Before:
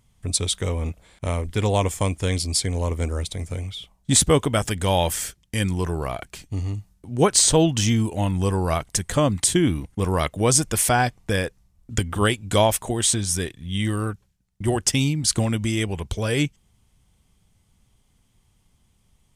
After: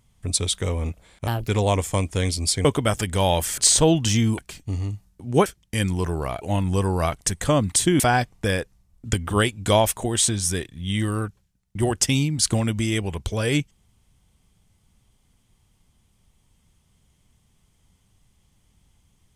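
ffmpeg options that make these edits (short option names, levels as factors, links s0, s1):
-filter_complex "[0:a]asplit=9[s0][s1][s2][s3][s4][s5][s6][s7][s8];[s0]atrim=end=1.274[s9];[s1]atrim=start=1.27:end=1.55,asetpts=PTS-STARTPTS,asetrate=59535,aresample=44100[s10];[s2]atrim=start=1.546:end=2.722[s11];[s3]atrim=start=4.328:end=5.262[s12];[s4]atrim=start=7.298:end=8.102[s13];[s5]atrim=start=6.218:end=7.302[s14];[s6]atrim=start=5.258:end=6.222[s15];[s7]atrim=start=8.098:end=9.682[s16];[s8]atrim=start=10.848[s17];[s9][s10]acrossfade=d=0.004:c1=hsin:c2=hsin[s18];[s18][s11]acrossfade=d=0.004:c1=hsin:c2=hsin[s19];[s19][s12]acrossfade=d=0.004:c1=hsin:c2=hsin[s20];[s20][s13]acrossfade=d=0.004:c1=hsin:c2=hsin[s21];[s21][s14]acrossfade=d=0.004:c1=hsin:c2=hsin[s22];[s22][s15]acrossfade=d=0.004:c1=hsin:c2=hsin[s23];[s23][s16]acrossfade=d=0.004:c1=hsin:c2=hsin[s24];[s24][s17]acrossfade=d=0.004:c1=hsin:c2=hsin"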